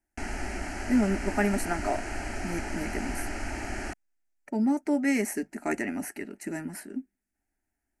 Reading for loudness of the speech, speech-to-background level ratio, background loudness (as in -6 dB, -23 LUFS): -30.5 LUFS, 5.5 dB, -36.0 LUFS